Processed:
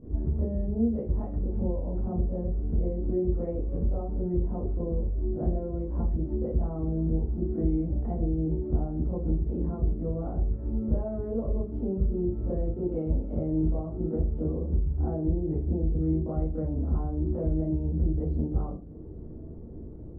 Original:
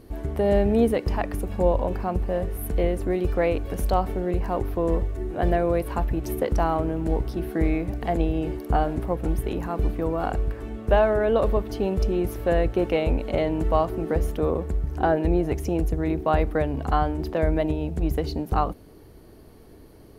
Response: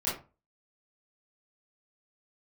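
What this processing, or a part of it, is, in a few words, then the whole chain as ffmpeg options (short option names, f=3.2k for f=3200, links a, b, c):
television next door: -filter_complex "[0:a]acompressor=threshold=-33dB:ratio=5,lowpass=370[a];[1:a]atrim=start_sample=2205[b];[a][b]afir=irnorm=-1:irlink=0"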